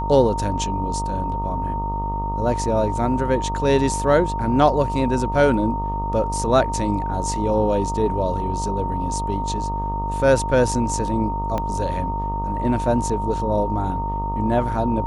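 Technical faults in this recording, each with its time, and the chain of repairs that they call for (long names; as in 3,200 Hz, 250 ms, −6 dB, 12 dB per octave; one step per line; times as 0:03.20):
mains buzz 50 Hz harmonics 25 −27 dBFS
whistle 920 Hz −25 dBFS
0:11.58: click −12 dBFS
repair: click removal
hum removal 50 Hz, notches 25
notch filter 920 Hz, Q 30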